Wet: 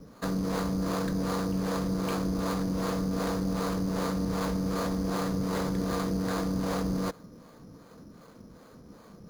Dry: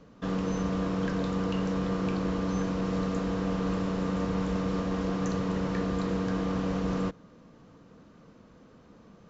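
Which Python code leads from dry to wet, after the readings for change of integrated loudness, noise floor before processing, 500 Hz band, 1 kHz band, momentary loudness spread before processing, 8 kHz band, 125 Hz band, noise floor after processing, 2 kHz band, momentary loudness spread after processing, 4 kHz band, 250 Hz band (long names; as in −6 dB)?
0.0 dB, −56 dBFS, −0.5 dB, +1.5 dB, 1 LU, can't be measured, −0.5 dB, −53 dBFS, 0.0 dB, 0 LU, +3.0 dB, −0.5 dB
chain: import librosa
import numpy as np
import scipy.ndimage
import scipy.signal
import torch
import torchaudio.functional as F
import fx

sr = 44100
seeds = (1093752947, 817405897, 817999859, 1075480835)

p1 = fx.harmonic_tremolo(x, sr, hz=2.6, depth_pct=70, crossover_hz=450.0)
p2 = np.repeat(scipy.signal.resample_poly(p1, 1, 8), 8)[:len(p1)]
p3 = fx.over_compress(p2, sr, threshold_db=-36.0, ratio=-0.5)
p4 = p2 + (p3 * 10.0 ** (-2.0 / 20.0))
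y = fx.doppler_dist(p4, sr, depth_ms=0.21)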